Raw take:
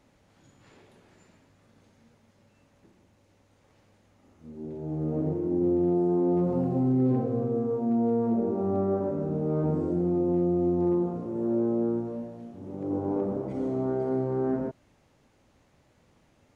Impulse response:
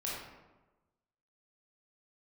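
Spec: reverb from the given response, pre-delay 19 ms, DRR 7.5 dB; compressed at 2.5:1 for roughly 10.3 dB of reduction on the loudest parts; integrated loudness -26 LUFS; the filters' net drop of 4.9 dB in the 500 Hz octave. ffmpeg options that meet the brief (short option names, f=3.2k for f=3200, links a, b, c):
-filter_complex "[0:a]equalizer=f=500:t=o:g=-7.5,acompressor=threshold=-40dB:ratio=2.5,asplit=2[a][b];[1:a]atrim=start_sample=2205,adelay=19[c];[b][c]afir=irnorm=-1:irlink=0,volume=-10.5dB[d];[a][d]amix=inputs=2:normalize=0,volume=13dB"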